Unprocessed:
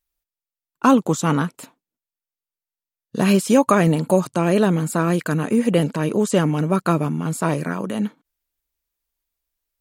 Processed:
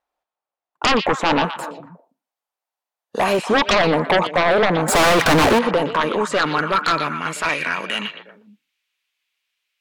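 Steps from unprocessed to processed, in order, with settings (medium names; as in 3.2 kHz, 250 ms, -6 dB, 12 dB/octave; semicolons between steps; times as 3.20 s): 1.58–3.39 s: RIAA curve recording; in parallel at 0 dB: peak limiter -15 dBFS, peak gain reduction 11.5 dB; on the sum: band-pass sweep 760 Hz -> 2.6 kHz, 5.06–7.76 s; 4.88–5.59 s: power-law waveshaper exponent 0.5; sine folder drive 13 dB, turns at -8 dBFS; on a send: repeats whose band climbs or falls 119 ms, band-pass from 3.2 kHz, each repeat -1.4 oct, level -6 dB; on the sum: trim -4 dB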